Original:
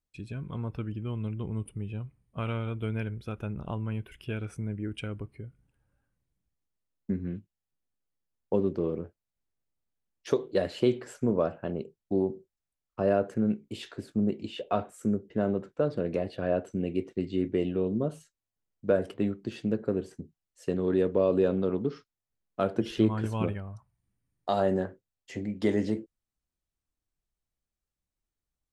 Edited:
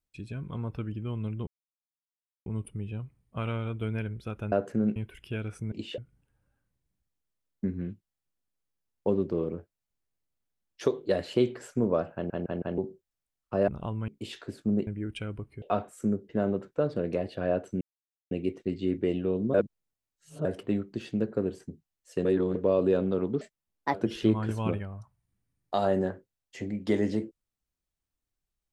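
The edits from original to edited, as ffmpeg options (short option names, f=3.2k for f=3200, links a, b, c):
-filter_complex "[0:a]asplit=21[a][b][c][d][e][f][g][h][i][j][k][l][m][n][o][p][q][r][s][t][u];[a]atrim=end=1.47,asetpts=PTS-STARTPTS,afade=t=out:st=1.466:d=0.004:c=hsin,apad=pad_dur=0.99[v];[b]atrim=start=1.47:end=3.532,asetpts=PTS-STARTPTS,afade=t=in:d=0.004:c=hsin[w];[c]atrim=start=13.138:end=13.582[x];[d]atrim=start=3.928:end=4.692[y];[e]atrim=start=14.368:end=14.632[z];[f]atrim=start=5.438:end=11.762[aa];[g]atrim=start=11.598:end=11.762[ab];[h]atrim=start=11.598:end=11.762[ac];[i]atrim=start=11.598:end=11.762[ad];[j]atrim=start=12.238:end=13.142[ae];[k]atrim=start=3.528:end=3.932[af];[l]atrim=start=13.578:end=14.372[ag];[m]atrim=start=4.688:end=5.442[ah];[n]atrim=start=14.628:end=16.82,asetpts=PTS-STARTPTS,afade=t=out:st=2.188:d=0.004:c=hsin,apad=pad_dur=0.5[ai];[o]atrim=start=16.82:end=18.052,asetpts=PTS-STARTPTS,afade=t=in:d=0.004:c=hsin[aj];[p]atrim=start=18.048:end=18.962,asetpts=PTS-STARTPTS,areverse[ak];[q]atrim=start=18.958:end=20.762[al];[r]atrim=start=20.758:end=21.062,asetpts=PTS-STARTPTS,areverse[am];[s]atrim=start=21.058:end=21.924[an];[t]atrim=start=21.92:end=22.69,asetpts=PTS-STARTPTS,asetrate=63945,aresample=44100[ao];[u]atrim=start=22.686[ap];[v][w]concat=n=2:v=0:a=1[aq];[aq][x]acrossfade=d=0.004:c1=hsin:c2=hsin[ar];[ar][y]acrossfade=d=0.004:c1=hsin:c2=hsin[as];[as][z]acrossfade=d=0.004:c1=hsin:c2=hsin[at];[at][aa]acrossfade=d=0.004:c1=hsin:c2=hsin[au];[au][ab]acrossfade=d=0.004:c1=hsin:c2=hsin[av];[av][ac]acrossfade=d=0.004:c1=hsin:c2=hsin[aw];[aw][ad]acrossfade=d=0.004:c1=hsin:c2=hsin[ax];[ax][ae]acrossfade=d=0.004:c1=hsin:c2=hsin[ay];[ay][af]acrossfade=d=0.004:c1=hsin:c2=hsin[az];[az][ag]acrossfade=d=0.004:c1=hsin:c2=hsin[ba];[ba][ah]acrossfade=d=0.004:c1=hsin:c2=hsin[bb];[ai][aj]concat=n=2:v=0:a=1[bc];[bb][bc]acrossfade=d=0.004:c1=hsin:c2=hsin[bd];[bd][ak]acrossfade=d=0.004:c1=hsin:c2=hsin[be];[be][al]acrossfade=d=0.004:c1=hsin:c2=hsin[bf];[bf][am]acrossfade=d=0.004:c1=hsin:c2=hsin[bg];[bg][an]acrossfade=d=0.004:c1=hsin:c2=hsin[bh];[bh][ao]acrossfade=d=0.004:c1=hsin:c2=hsin[bi];[bi][ap]acrossfade=d=0.004:c1=hsin:c2=hsin"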